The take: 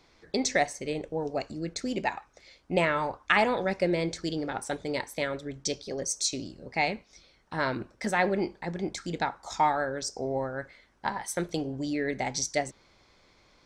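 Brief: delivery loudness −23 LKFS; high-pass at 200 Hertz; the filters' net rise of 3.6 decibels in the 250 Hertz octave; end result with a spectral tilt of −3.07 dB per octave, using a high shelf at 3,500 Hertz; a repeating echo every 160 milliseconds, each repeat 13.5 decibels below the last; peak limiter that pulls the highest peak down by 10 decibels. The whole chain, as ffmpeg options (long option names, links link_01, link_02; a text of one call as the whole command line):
ffmpeg -i in.wav -af "highpass=200,equalizer=frequency=250:width_type=o:gain=6.5,highshelf=frequency=3500:gain=6.5,alimiter=limit=-15dB:level=0:latency=1,aecho=1:1:160|320:0.211|0.0444,volume=6dB" out.wav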